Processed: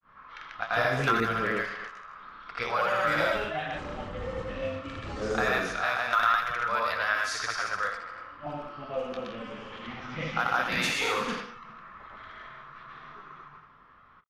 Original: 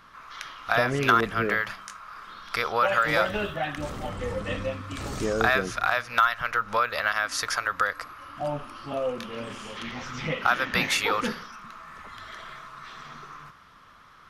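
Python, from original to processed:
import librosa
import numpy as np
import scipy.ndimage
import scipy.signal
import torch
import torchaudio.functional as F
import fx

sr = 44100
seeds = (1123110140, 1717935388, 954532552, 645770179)

y = fx.echo_thinned(x, sr, ms=80, feedback_pct=56, hz=170.0, wet_db=-5.5)
y = fx.granulator(y, sr, seeds[0], grain_ms=197.0, per_s=20.0, spray_ms=100.0, spread_st=0)
y = fx.env_lowpass(y, sr, base_hz=1900.0, full_db=-23.5)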